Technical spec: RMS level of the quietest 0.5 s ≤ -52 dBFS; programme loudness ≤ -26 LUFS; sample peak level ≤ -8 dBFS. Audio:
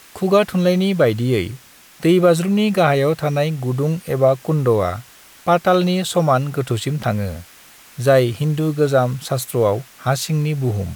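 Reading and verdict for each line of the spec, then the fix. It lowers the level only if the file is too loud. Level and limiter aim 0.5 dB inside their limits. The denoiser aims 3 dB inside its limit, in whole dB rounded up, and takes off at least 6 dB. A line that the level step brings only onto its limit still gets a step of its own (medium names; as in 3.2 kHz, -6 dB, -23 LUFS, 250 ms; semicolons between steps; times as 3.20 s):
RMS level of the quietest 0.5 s -45 dBFS: fail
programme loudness -18.0 LUFS: fail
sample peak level -3.5 dBFS: fail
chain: trim -8.5 dB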